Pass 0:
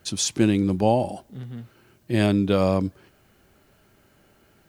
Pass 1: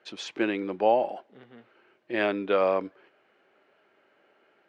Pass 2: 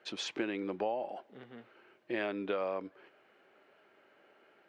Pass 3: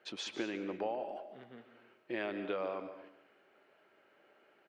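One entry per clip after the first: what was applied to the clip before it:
Chebyshev band-pass 430–2500 Hz, order 2; dynamic EQ 1500 Hz, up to +5 dB, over -42 dBFS, Q 0.94; gain -1.5 dB
compressor 4:1, threshold -33 dBFS, peak gain reduction 14 dB
feedback echo 0.145 s, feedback 27%, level -13 dB; on a send at -12 dB: reverb RT60 0.35 s, pre-delay 0.16 s; on the sum: gain -3 dB

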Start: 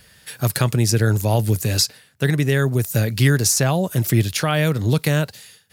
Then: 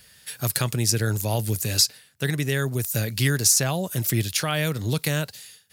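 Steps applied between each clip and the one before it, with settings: high shelf 2300 Hz +8 dB; gain -7 dB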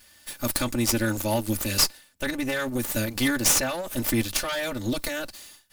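minimum comb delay 3.4 ms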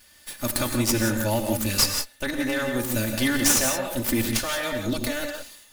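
non-linear reverb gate 0.2 s rising, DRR 4 dB

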